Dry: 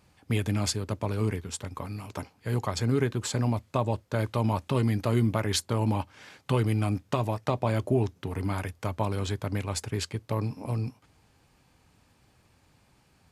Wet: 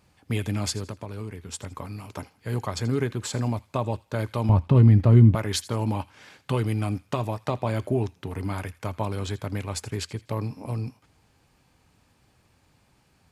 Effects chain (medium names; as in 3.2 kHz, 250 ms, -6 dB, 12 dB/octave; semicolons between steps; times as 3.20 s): 0.86–1.52 s: compression 6:1, threshold -32 dBFS, peak gain reduction 9 dB; 4.49–5.35 s: RIAA curve playback; feedback echo behind a high-pass 82 ms, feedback 33%, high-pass 1.6 kHz, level -17.5 dB